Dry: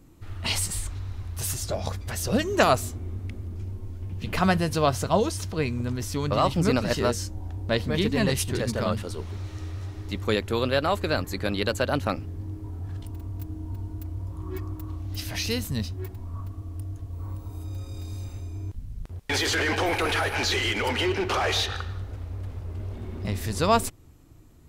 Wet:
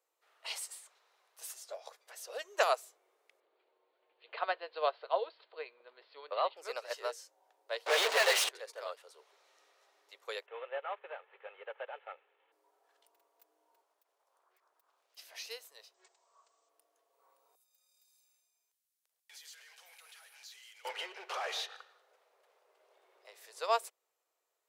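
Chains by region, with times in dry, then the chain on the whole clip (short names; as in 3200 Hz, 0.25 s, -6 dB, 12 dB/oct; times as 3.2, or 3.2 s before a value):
3.4–6.57 steep low-pass 4500 Hz 96 dB/oct + low shelf 300 Hz +6 dB
7.86–8.49 high shelf 8800 Hz -8 dB + overdrive pedal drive 42 dB, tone 4600 Hz, clips at -10 dBFS
10.46–12.52 CVSD 16 kbps + HPF 430 Hz + comb 2.3 ms, depth 35%
13.82–15.17 HPF 980 Hz 6 dB/oct + compressor, threshold -48 dBFS + Doppler distortion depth 0.57 ms
15.94–16.69 brick-wall FIR low-pass 8400 Hz + tone controls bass -13 dB, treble +13 dB
17.55–20.85 differentiator + compressor 1.5:1, threshold -39 dBFS
whole clip: steep high-pass 460 Hz 48 dB/oct; upward expander 1.5:1, over -37 dBFS; gain -7.5 dB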